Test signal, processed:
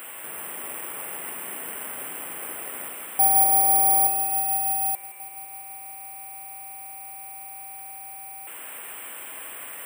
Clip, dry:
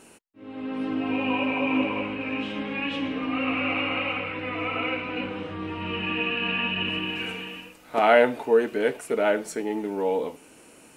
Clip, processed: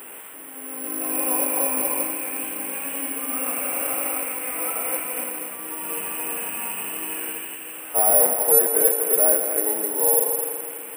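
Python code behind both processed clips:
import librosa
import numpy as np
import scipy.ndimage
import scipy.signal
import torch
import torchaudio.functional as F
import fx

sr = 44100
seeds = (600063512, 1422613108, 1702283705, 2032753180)

y = fx.delta_mod(x, sr, bps=16000, step_db=-33.0)
y = scipy.signal.sosfilt(scipy.signal.butter(2, 340.0, 'highpass', fs=sr, output='sos'), y)
y = fx.echo_heads(y, sr, ms=83, heads='all three', feedback_pct=68, wet_db=-13)
y = fx.dynamic_eq(y, sr, hz=630.0, q=0.79, threshold_db=-34.0, ratio=4.0, max_db=6)
y = (np.kron(y[::4], np.eye(4)[0]) * 4)[:len(y)]
y = y * librosa.db_to_amplitude(-4.5)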